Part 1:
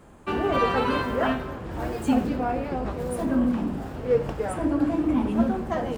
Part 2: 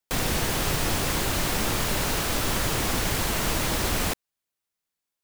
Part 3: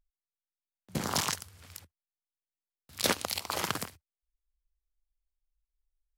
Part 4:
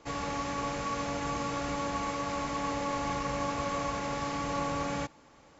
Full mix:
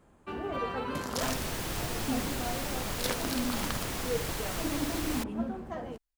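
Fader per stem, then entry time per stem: -11.0 dB, -9.5 dB, -6.0 dB, off; 0.00 s, 1.10 s, 0.00 s, off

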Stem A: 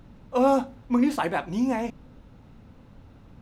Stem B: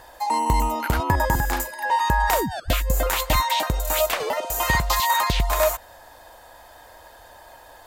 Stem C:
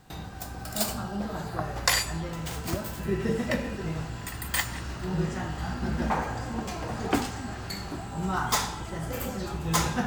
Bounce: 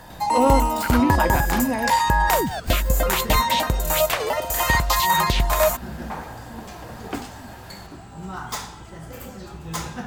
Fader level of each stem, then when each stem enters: +1.5, +1.5, -4.5 dB; 0.00, 0.00, 0.00 s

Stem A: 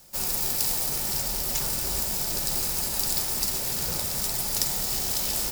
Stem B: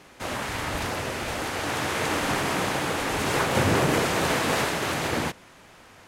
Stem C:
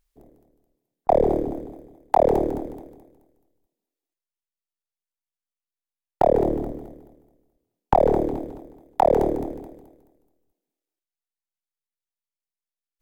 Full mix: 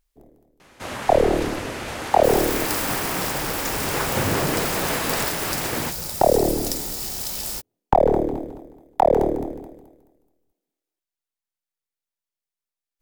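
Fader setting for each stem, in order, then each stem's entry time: -2.0, -1.0, +1.0 dB; 2.10, 0.60, 0.00 s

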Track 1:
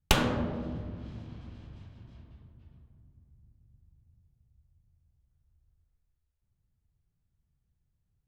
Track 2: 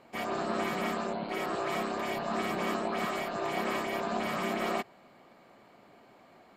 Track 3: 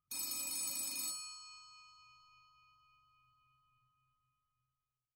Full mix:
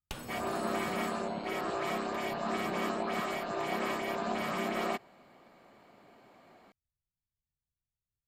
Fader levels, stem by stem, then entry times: -18.5, -1.5, -13.5 dB; 0.00, 0.15, 0.00 s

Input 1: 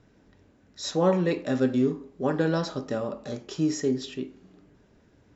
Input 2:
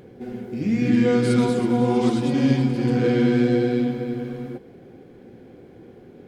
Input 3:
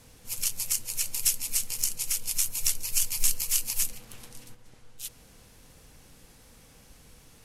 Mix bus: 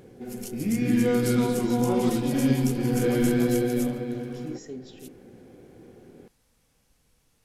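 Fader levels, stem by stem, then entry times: -13.0, -4.0, -13.0 dB; 0.85, 0.00, 0.00 s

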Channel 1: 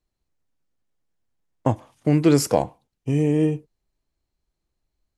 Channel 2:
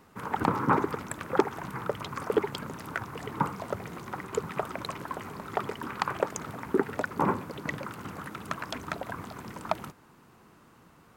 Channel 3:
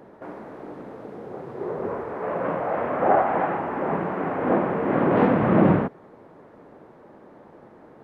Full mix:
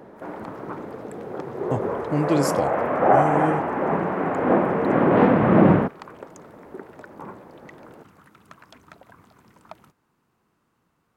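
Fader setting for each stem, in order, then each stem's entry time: -5.0, -13.0, +2.5 dB; 0.05, 0.00, 0.00 s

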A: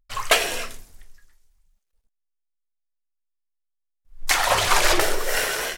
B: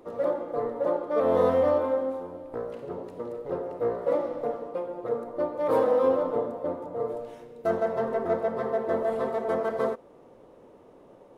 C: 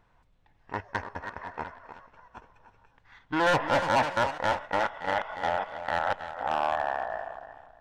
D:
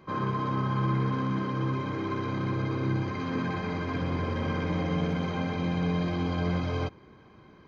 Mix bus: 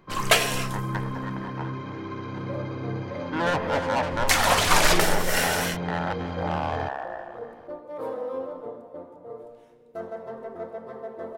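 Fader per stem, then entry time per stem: -1.0, -9.5, -2.0, -3.5 dB; 0.00, 2.30, 0.00, 0.00 s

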